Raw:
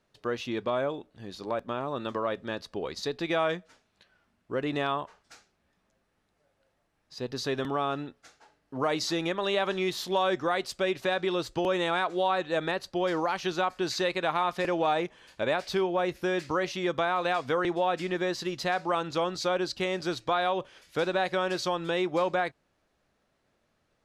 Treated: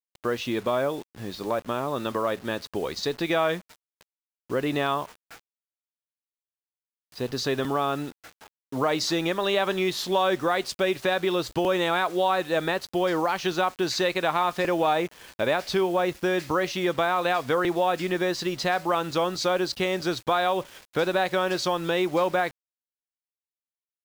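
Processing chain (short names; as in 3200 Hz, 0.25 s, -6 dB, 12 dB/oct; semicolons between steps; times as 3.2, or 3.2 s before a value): in parallel at -1 dB: compressor 20:1, threshold -37 dBFS, peak gain reduction 16 dB; on the sum: low-pass opened by the level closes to 1800 Hz, open at -26.5 dBFS; requantised 8-bit, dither none; gain +2 dB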